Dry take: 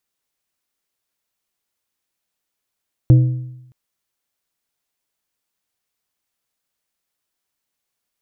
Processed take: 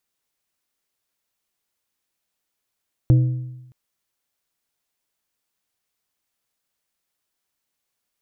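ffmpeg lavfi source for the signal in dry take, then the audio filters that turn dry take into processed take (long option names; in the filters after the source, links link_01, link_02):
-f lavfi -i "aevalsrc='0.631*pow(10,-3*t/0.87)*sin(2*PI*126*t)+0.168*pow(10,-3*t/0.661)*sin(2*PI*315*t)+0.0447*pow(10,-3*t/0.574)*sin(2*PI*504*t)+0.0119*pow(10,-3*t/0.537)*sin(2*PI*630*t)':duration=0.62:sample_rate=44100"
-af "alimiter=limit=-7dB:level=0:latency=1:release=496"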